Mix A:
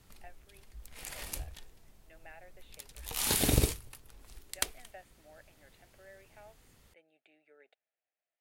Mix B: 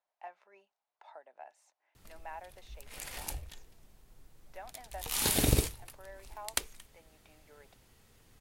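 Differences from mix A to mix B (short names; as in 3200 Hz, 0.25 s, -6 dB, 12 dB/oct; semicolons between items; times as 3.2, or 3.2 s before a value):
speech: remove fixed phaser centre 2400 Hz, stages 4; background: entry +1.95 s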